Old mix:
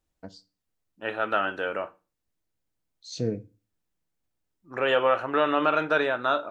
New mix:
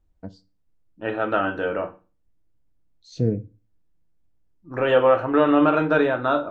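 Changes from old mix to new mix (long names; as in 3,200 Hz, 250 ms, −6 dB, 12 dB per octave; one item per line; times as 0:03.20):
second voice: send +10.0 dB
master: add spectral tilt −3 dB per octave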